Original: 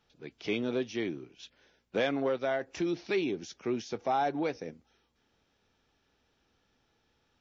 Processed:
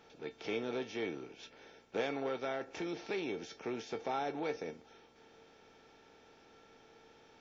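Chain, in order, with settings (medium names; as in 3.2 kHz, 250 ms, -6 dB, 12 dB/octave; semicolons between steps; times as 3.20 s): spectral levelling over time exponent 0.6; feedback comb 450 Hz, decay 0.19 s, harmonics all, mix 80%; trim +2 dB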